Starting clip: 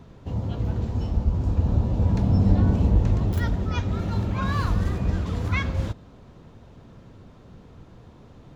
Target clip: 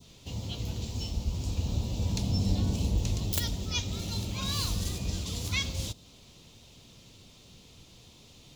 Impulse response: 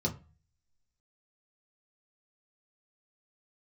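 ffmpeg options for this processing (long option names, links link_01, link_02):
-af "aexciter=amount=10.3:drive=5.1:freq=2400,adynamicequalizer=threshold=0.0112:dfrequency=2100:dqfactor=0.77:tfrequency=2100:tqfactor=0.77:attack=5:release=100:ratio=0.375:range=3:mode=cutabove:tftype=bell,aeval=exprs='(mod(1.78*val(0)+1,2)-1)/1.78':channel_layout=same,volume=-9dB"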